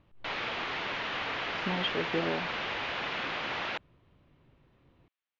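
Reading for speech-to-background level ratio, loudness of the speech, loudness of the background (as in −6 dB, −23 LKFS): −1.5 dB, −35.0 LKFS, −33.5 LKFS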